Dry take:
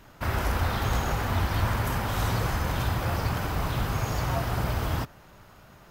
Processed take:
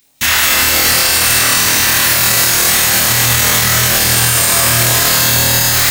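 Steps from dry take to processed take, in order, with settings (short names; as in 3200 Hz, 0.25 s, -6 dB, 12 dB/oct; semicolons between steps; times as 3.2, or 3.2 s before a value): recorder AGC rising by 9.6 dB/s; RIAA curve recording; gate -42 dBFS, range -33 dB; low shelf 130 Hz -7 dB; reverse; compressor 10:1, threshold -42 dBFS, peak gain reduction 20.5 dB; reverse; phaser stages 2, 2.2 Hz, lowest notch 270–1500 Hz; formant shift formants +5 st; flutter echo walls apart 4.3 m, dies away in 0.71 s; reverb RT60 2.7 s, pre-delay 0.11 s, DRR -7 dB; maximiser +34 dB; gain -1 dB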